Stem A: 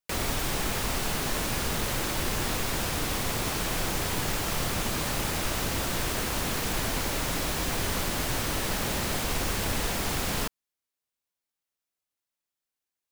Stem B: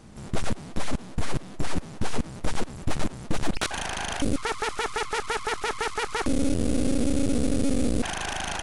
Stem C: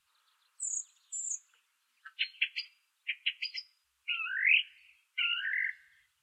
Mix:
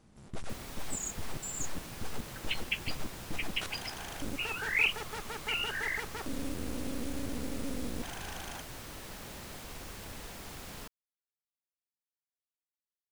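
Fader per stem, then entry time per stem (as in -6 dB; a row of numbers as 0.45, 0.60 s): -16.0, -13.5, -2.5 dB; 0.40, 0.00, 0.30 s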